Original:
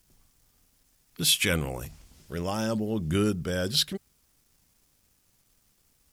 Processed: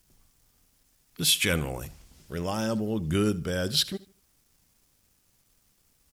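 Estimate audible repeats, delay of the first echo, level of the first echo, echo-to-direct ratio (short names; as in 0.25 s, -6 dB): 2, 76 ms, -19.5 dB, -19.0 dB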